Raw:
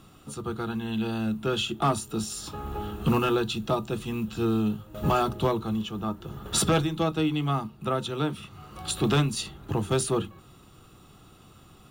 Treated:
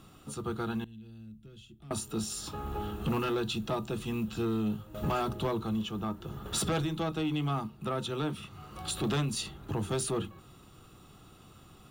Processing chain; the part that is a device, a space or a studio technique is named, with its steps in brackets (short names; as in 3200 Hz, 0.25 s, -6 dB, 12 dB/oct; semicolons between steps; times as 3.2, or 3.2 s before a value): soft clipper into limiter (soft clip -19 dBFS, distortion -17 dB; limiter -23 dBFS, peak gain reduction 3.5 dB); 0.84–1.91 passive tone stack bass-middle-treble 10-0-1; gain -2 dB